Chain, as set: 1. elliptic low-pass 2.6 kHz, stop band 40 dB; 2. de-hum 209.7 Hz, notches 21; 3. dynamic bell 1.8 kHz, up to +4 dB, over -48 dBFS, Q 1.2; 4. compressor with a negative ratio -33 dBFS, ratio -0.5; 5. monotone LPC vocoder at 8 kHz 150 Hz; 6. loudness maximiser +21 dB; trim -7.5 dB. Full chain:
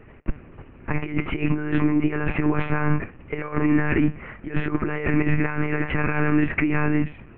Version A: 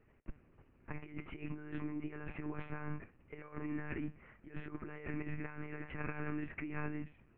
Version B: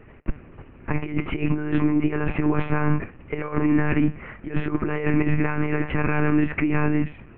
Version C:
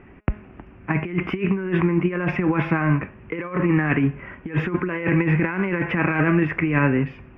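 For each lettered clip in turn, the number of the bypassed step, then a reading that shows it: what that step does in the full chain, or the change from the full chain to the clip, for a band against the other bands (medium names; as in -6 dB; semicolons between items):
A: 6, crest factor change +5.0 dB; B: 3, 2 kHz band -2.5 dB; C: 5, 250 Hz band -1.5 dB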